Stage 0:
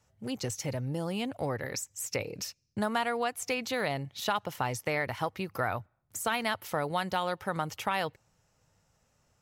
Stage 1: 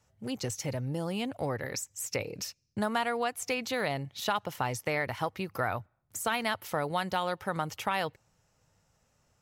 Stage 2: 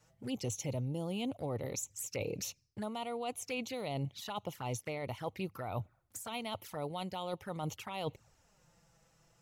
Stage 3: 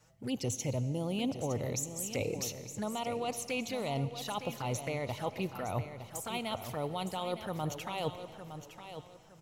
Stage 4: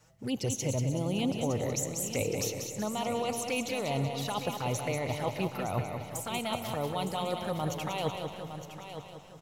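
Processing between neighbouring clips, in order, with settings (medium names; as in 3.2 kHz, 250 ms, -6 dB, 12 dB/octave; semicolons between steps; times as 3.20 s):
no audible change
reverse; compression 12:1, threshold -38 dBFS, peak gain reduction 15 dB; reverse; touch-sensitive flanger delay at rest 6.9 ms, full sweep at -39.5 dBFS; trim +5.5 dB
feedback delay 912 ms, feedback 29%, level -10.5 dB; algorithmic reverb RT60 2.8 s, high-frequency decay 0.85×, pre-delay 30 ms, DRR 14 dB; trim +3 dB
feedback delay 188 ms, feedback 44%, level -6.5 dB; trim +2.5 dB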